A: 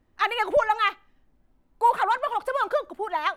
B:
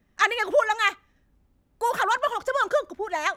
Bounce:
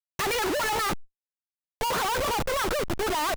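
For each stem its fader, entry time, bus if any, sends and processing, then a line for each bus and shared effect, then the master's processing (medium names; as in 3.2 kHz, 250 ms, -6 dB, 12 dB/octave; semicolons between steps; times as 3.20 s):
0.0 dB, 0.00 s, no send, none
-2.5 dB, 0.4 ms, no send, waveshaping leveller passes 1; peak limiter -17.5 dBFS, peak gain reduction 11 dB; auto duck -24 dB, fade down 1.15 s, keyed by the first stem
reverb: none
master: treble shelf 3.2 kHz -2 dB; Schmitt trigger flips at -40 dBFS; decay stretcher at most 110 dB/s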